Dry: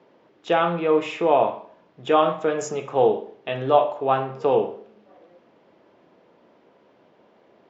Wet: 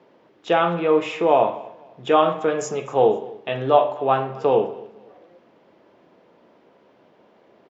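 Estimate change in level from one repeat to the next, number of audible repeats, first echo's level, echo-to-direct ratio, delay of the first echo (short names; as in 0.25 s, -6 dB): -10.5 dB, 2, -21.5 dB, -21.0 dB, 0.25 s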